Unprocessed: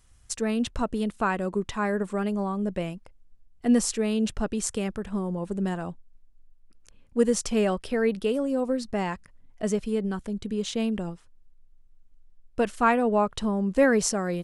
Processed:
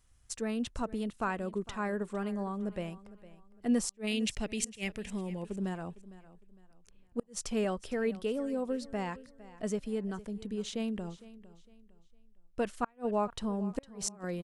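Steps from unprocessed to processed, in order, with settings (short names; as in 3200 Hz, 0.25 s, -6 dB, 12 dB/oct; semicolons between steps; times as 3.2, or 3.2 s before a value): 4.07–5.43 resonant high shelf 1700 Hz +7.5 dB, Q 3; flipped gate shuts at -12 dBFS, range -37 dB; feedback echo 0.457 s, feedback 33%, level -18 dB; gain -7.5 dB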